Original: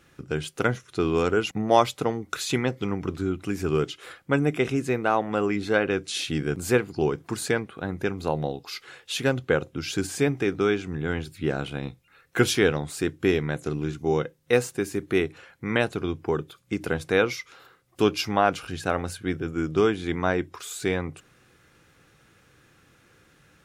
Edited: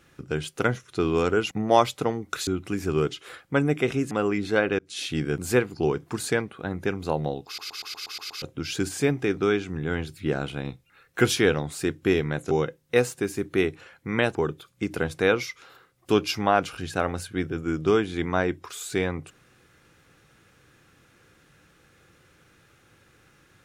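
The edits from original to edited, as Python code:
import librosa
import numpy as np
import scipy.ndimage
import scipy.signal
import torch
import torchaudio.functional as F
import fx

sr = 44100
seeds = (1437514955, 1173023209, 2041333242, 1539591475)

y = fx.edit(x, sr, fx.cut(start_s=2.47, length_s=0.77),
    fx.cut(start_s=4.88, length_s=0.41),
    fx.fade_in_span(start_s=5.97, length_s=0.43, curve='qsin'),
    fx.stutter_over(start_s=8.64, slice_s=0.12, count=8),
    fx.cut(start_s=13.69, length_s=0.39),
    fx.cut(start_s=15.92, length_s=0.33), tone=tone)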